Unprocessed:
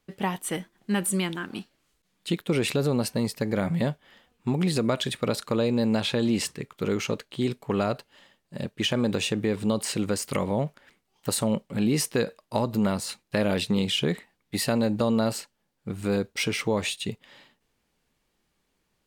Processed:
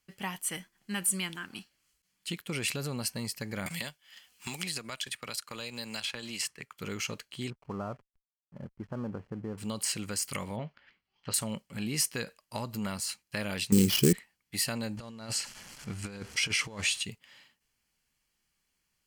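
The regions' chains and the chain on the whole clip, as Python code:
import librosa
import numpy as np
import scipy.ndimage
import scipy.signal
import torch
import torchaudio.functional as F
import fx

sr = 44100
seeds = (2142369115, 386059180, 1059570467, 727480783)

y = fx.chain(x, sr, fx.low_shelf(hz=470.0, db=-10.5),
    fx.transient(attack_db=-4, sustain_db=-9),
    fx.band_squash(depth_pct=100), at=(3.66, 6.78))
y = fx.chain(y, sr, fx.steep_lowpass(hz=1300.0, slope=36),
    fx.backlash(play_db=-43.5), at=(7.5, 9.58))
y = fx.chain(y, sr, fx.lowpass(hz=4100.0, slope=24),
    fx.doubler(ms=18.0, db=-11.0), at=(10.56, 11.34))
y = fx.chain(y, sr, fx.low_shelf_res(hz=520.0, db=11.5, q=3.0),
    fx.sample_hold(seeds[0], rate_hz=8200.0, jitter_pct=20), at=(13.72, 14.13))
y = fx.chain(y, sr, fx.zero_step(step_db=-39.0),
    fx.lowpass(hz=8600.0, slope=12),
    fx.over_compress(threshold_db=-27.0, ratio=-0.5), at=(14.97, 17.03))
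y = fx.tone_stack(y, sr, knobs='5-5-5')
y = fx.notch(y, sr, hz=3700.0, q=6.0)
y = y * librosa.db_to_amplitude(6.5)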